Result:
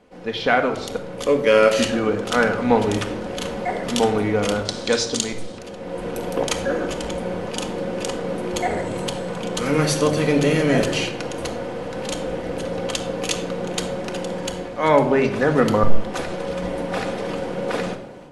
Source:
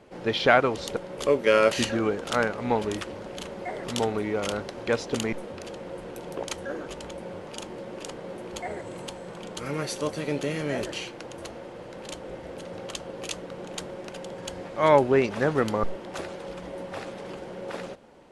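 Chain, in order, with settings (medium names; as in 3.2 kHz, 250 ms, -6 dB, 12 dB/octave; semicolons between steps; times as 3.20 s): 4.65–5.58 s: high-order bell 5.6 kHz +13.5 dB; level rider gain up to 12 dB; simulated room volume 2400 m³, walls furnished, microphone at 1.9 m; trim -2.5 dB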